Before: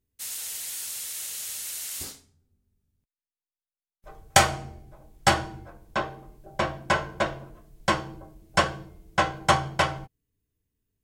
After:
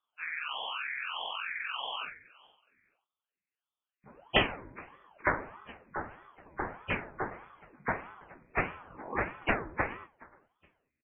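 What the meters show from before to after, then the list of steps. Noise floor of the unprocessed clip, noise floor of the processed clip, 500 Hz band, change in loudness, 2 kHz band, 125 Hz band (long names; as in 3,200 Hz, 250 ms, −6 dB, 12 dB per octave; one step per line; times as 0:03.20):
below −85 dBFS, below −85 dBFS, −7.5 dB, −7.5 dB, −4.5 dB, −11.0 dB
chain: hearing-aid frequency compression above 1,200 Hz 4 to 1
healed spectral selection 0:08.84–0:09.17, 390–930 Hz both
repeating echo 420 ms, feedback 26%, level −22.5 dB
gain on a spectral selection 0:00.32–0:02.34, 380–1,600 Hz −10 dB
ring modulator whose carrier an LFO sweeps 680 Hz, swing 75%, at 1.6 Hz
level −6.5 dB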